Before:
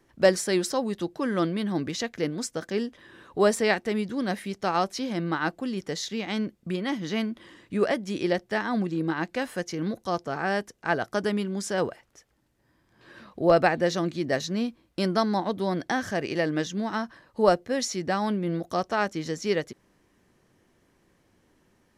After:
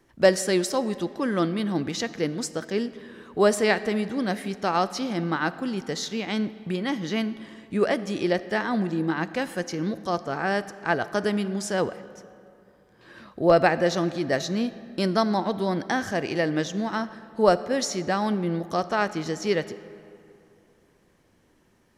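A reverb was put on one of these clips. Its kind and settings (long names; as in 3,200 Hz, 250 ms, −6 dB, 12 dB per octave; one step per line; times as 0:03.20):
comb and all-pass reverb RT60 2.7 s, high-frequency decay 0.6×, pre-delay 5 ms, DRR 14.5 dB
level +1.5 dB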